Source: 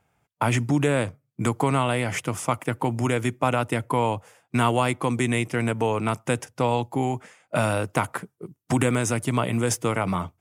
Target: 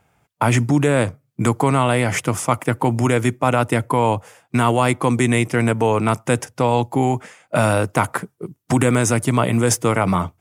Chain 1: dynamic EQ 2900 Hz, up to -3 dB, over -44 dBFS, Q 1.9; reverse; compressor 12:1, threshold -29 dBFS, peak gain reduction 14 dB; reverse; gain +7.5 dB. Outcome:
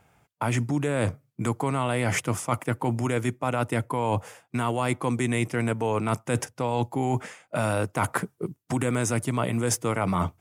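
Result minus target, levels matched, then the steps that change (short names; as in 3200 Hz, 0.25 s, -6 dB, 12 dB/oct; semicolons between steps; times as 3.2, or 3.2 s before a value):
compressor: peak gain reduction +10 dB
change: compressor 12:1, threshold -18 dBFS, peak gain reduction 4 dB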